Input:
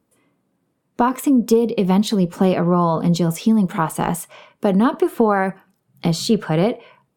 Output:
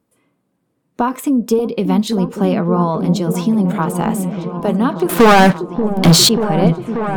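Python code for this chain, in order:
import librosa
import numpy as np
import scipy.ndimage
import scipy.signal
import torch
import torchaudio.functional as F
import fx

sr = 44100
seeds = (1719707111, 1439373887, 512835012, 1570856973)

y = fx.leveller(x, sr, passes=5, at=(5.09, 6.29))
y = fx.echo_opening(y, sr, ms=585, hz=400, octaves=1, feedback_pct=70, wet_db=-6)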